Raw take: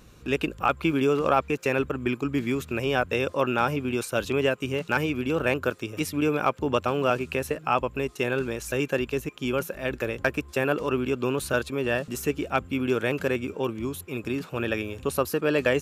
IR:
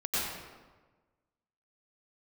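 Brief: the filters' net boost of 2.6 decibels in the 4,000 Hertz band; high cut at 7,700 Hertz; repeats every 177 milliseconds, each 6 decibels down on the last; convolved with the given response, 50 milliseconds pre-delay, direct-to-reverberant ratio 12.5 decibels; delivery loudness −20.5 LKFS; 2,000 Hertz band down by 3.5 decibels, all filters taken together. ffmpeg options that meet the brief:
-filter_complex "[0:a]lowpass=7700,equalizer=frequency=2000:width_type=o:gain=-8,equalizer=frequency=4000:width_type=o:gain=8,aecho=1:1:177|354|531|708|885|1062:0.501|0.251|0.125|0.0626|0.0313|0.0157,asplit=2[link_01][link_02];[1:a]atrim=start_sample=2205,adelay=50[link_03];[link_02][link_03]afir=irnorm=-1:irlink=0,volume=-20.5dB[link_04];[link_01][link_04]amix=inputs=2:normalize=0,volume=5.5dB"

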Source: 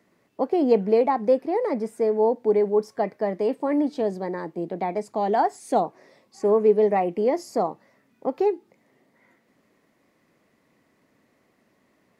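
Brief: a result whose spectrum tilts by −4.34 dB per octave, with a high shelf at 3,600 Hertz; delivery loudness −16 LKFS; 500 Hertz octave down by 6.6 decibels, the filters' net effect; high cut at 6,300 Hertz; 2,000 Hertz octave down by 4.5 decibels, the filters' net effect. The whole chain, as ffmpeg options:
ffmpeg -i in.wav -af "lowpass=6300,equalizer=frequency=500:width_type=o:gain=-8,equalizer=frequency=2000:width_type=o:gain=-6,highshelf=frequency=3600:gain=5,volume=12.5dB" out.wav

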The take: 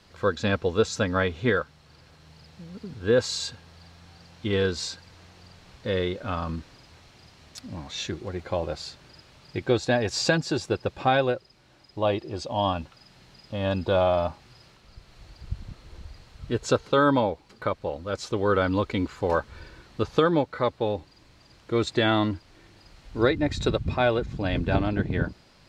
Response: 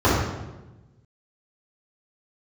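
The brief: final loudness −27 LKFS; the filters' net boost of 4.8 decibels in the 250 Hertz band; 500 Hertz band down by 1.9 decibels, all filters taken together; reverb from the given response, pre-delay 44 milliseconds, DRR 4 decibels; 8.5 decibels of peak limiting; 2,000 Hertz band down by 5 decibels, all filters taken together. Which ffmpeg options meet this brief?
-filter_complex "[0:a]equalizer=frequency=250:width_type=o:gain=7.5,equalizer=frequency=500:width_type=o:gain=-4,equalizer=frequency=2000:width_type=o:gain=-7,alimiter=limit=-15dB:level=0:latency=1,asplit=2[link_01][link_02];[1:a]atrim=start_sample=2205,adelay=44[link_03];[link_02][link_03]afir=irnorm=-1:irlink=0,volume=-26.5dB[link_04];[link_01][link_04]amix=inputs=2:normalize=0,volume=-3.5dB"

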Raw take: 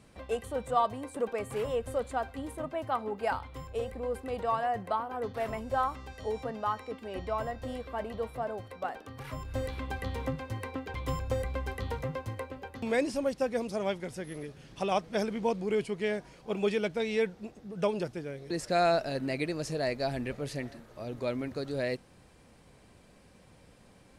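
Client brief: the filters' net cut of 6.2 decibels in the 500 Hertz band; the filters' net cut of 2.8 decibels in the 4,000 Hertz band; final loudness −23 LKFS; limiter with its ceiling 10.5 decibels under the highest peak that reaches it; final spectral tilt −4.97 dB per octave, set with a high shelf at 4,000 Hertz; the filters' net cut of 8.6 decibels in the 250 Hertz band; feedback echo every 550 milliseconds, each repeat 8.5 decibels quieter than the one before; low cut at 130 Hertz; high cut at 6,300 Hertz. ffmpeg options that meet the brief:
ffmpeg -i in.wav -af "highpass=130,lowpass=6300,equalizer=frequency=250:width_type=o:gain=-9,equalizer=frequency=500:width_type=o:gain=-5.5,highshelf=frequency=4000:gain=3,equalizer=frequency=4000:width_type=o:gain=-4.5,alimiter=level_in=4dB:limit=-24dB:level=0:latency=1,volume=-4dB,aecho=1:1:550|1100|1650|2200:0.376|0.143|0.0543|0.0206,volume=17.5dB" out.wav

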